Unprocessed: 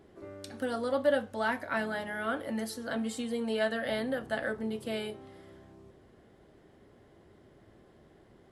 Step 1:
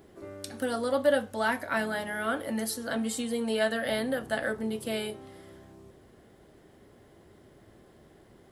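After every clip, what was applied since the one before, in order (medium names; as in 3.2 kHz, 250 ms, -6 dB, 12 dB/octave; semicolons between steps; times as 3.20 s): treble shelf 7.7 kHz +11.5 dB; trim +2.5 dB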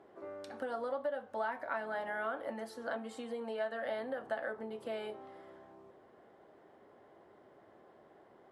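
compression 10:1, threshold -32 dBFS, peak gain reduction 14.5 dB; band-pass filter 840 Hz, Q 1.1; trim +2 dB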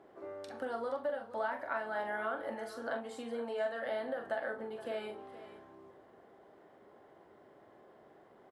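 doubling 43 ms -7 dB; delay 471 ms -15 dB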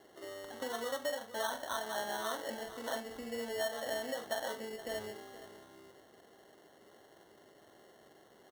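sample-and-hold 18×; trim -1 dB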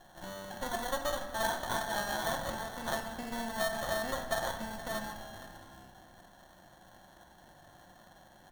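comb filter that takes the minimum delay 1.2 ms; simulated room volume 2600 m³, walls mixed, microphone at 0.92 m; trim +4.5 dB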